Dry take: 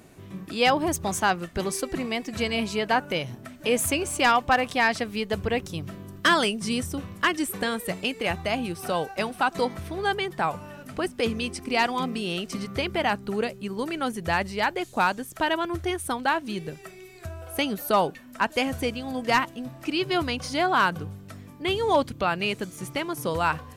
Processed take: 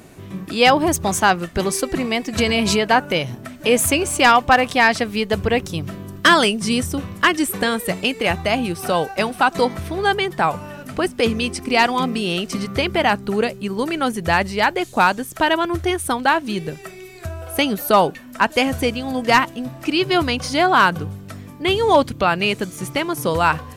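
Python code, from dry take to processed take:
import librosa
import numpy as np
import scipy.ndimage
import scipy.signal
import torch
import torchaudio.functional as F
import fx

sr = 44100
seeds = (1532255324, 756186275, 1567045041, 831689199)

y = fx.pre_swell(x, sr, db_per_s=25.0, at=(2.38, 2.87))
y = y * 10.0 ** (7.5 / 20.0)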